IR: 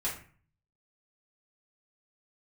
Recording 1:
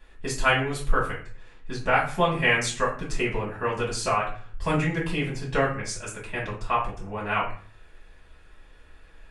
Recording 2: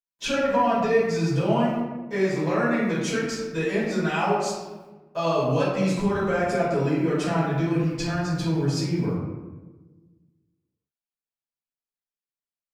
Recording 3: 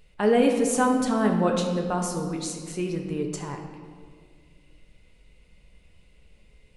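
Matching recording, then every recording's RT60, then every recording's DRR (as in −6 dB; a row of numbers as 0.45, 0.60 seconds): 1; 0.45, 1.2, 1.9 seconds; −7.0, −11.5, 2.0 decibels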